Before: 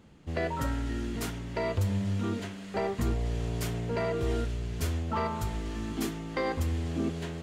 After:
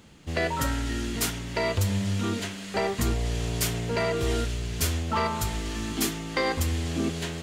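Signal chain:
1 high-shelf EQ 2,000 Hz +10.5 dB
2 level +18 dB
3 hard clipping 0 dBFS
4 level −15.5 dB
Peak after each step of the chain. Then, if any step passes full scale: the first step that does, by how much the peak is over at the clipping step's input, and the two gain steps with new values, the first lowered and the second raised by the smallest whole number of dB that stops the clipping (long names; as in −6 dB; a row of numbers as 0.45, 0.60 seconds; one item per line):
−14.5, +3.5, 0.0, −15.5 dBFS
step 2, 3.5 dB
step 2 +14 dB, step 4 −11.5 dB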